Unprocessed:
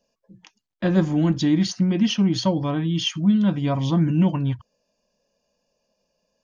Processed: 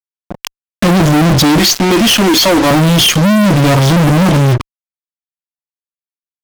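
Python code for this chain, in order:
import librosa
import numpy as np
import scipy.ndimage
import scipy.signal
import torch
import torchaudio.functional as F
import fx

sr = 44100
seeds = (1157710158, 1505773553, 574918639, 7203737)

y = fx.highpass(x, sr, hz=300.0, slope=24, at=(1.58, 2.71))
y = fx.fuzz(y, sr, gain_db=46.0, gate_db=-42.0)
y = F.gain(torch.from_numpy(y), 5.5).numpy()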